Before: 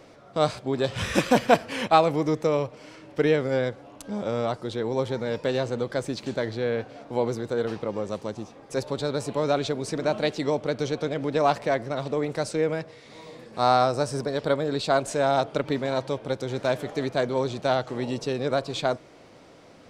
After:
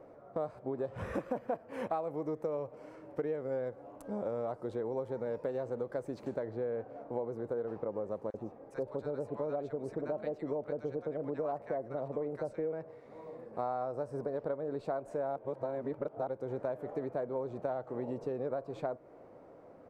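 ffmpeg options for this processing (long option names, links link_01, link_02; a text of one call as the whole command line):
ffmpeg -i in.wav -filter_complex "[0:a]asettb=1/sr,asplit=3[link_01][link_02][link_03];[link_01]atrim=end=1.734[link_04];[link_02]atrim=start=1.73:end=6.43,asetpts=PTS-STARTPTS,afade=type=in:duration=0.004:curve=qsin,afade=type=out:start_time=4.696:duration=0.004:curve=qsin,highshelf=frequency=3400:gain=8.5[link_05];[link_03]atrim=start=6.426[link_06];[link_04][link_05]acrossfade=duration=0.004:curve1=hsin:curve2=qsin[link_07];[link_07][link_06]acrossfade=duration=0.004:curve1=qsin:curve2=hsin,asettb=1/sr,asplit=3[link_08][link_09][link_10];[link_08]atrim=end=8.304[link_11];[link_09]atrim=start=8.3:end=12.73,asetpts=PTS-STARTPTS,afade=type=in:duration=0.004:curve=qsin,afade=type=out:start_time=4.426:duration=0.004:curve=qsin,acrossover=split=1100[link_12][link_13];[link_12]adelay=40[link_14];[link_14][link_13]amix=inputs=2:normalize=0,atrim=end_sample=195363[link_15];[link_10]atrim=start=12.726[link_16];[link_11][link_15]acrossfade=duration=0.004:curve1=hsin:curve2=qsin[link_17];[link_17][link_16]acrossfade=duration=0.004:curve1=qsin:curve2=hsin,asplit=3[link_18][link_19][link_20];[link_18]atrim=end=15.362[link_21];[link_19]atrim=start=15.358:end=16.272,asetpts=PTS-STARTPTS,areverse[link_22];[link_20]atrim=start=16.268[link_23];[link_21][link_22]acrossfade=duration=0.004:curve1=hsin:curve2=hsin[link_24];[link_24][link_23]acrossfade=duration=0.004:curve1=hsin:curve2=hsin,firequalizer=gain_entry='entry(170,0);entry(510,7);entry(3300,-23);entry(5400,-26)':delay=0.05:min_phase=1,acompressor=threshold=-25dB:ratio=6,aemphasis=mode=production:type=50fm,volume=-7.5dB" out.wav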